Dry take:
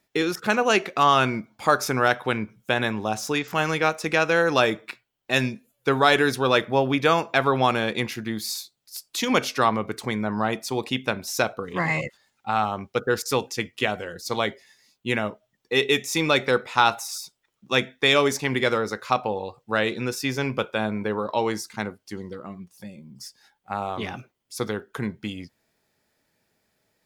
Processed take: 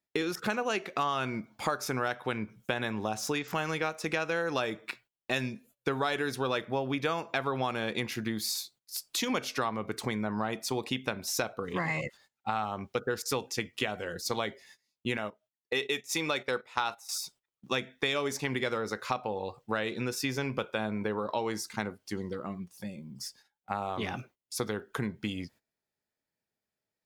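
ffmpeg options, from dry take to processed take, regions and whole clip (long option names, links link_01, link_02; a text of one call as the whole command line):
ffmpeg -i in.wav -filter_complex "[0:a]asettb=1/sr,asplit=3[link_01][link_02][link_03];[link_01]atrim=end=15.174[link_04];[link_02]atrim=start=15.17:end=17.09,asetpts=PTS-STARTPTS,afade=type=in:duration=0.004:curve=qsin,afade=type=out:start_time=1.916:duration=0.004:curve=qsin,agate=range=-12dB:threshold=-31dB:ratio=16:release=100:detection=peak,lowshelf=frequency=280:gain=-7[link_05];[link_03]atrim=start=17.086[link_06];[link_04][link_05]acrossfade=duration=0.004:curve1=hsin:curve2=qsin[link_07];[link_07][link_06]acrossfade=duration=0.004:curve1=qsin:curve2=hsin,agate=range=-19dB:threshold=-53dB:ratio=16:detection=peak,acompressor=threshold=-29dB:ratio=4" out.wav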